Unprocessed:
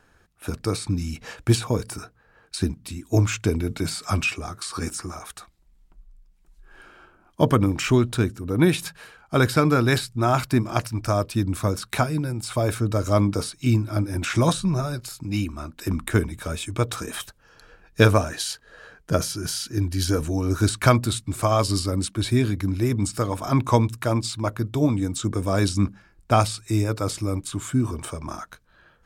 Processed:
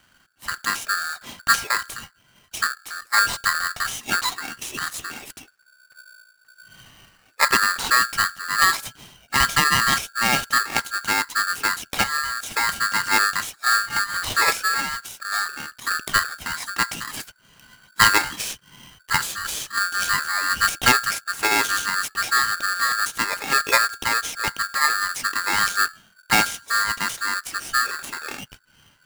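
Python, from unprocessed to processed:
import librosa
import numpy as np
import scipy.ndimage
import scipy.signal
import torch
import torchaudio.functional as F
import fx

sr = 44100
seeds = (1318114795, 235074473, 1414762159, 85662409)

y = x * np.sign(np.sin(2.0 * np.pi * 1500.0 * np.arange(len(x)) / sr))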